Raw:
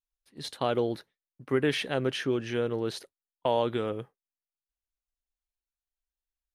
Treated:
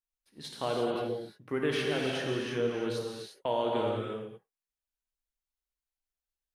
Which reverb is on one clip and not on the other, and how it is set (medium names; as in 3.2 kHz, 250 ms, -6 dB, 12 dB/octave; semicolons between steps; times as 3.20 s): gated-style reverb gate 380 ms flat, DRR -2 dB; trim -5.5 dB